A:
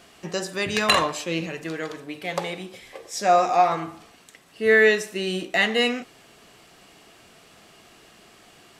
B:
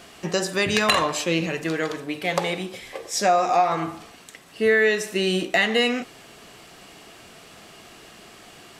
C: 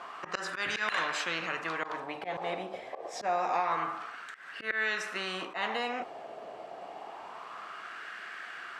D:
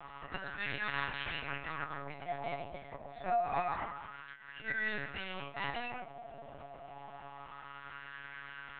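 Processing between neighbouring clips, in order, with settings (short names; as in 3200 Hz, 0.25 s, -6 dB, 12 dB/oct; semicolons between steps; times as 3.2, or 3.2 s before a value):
compressor 3:1, threshold -23 dBFS, peak gain reduction 8.5 dB; gain +5.5 dB
wah 0.27 Hz 650–1600 Hz, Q 6.2; auto swell 0.112 s; spectral compressor 2:1
resonator 140 Hz, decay 0.21 s, harmonics all, mix 90%; LPC vocoder at 8 kHz pitch kept; gain +3.5 dB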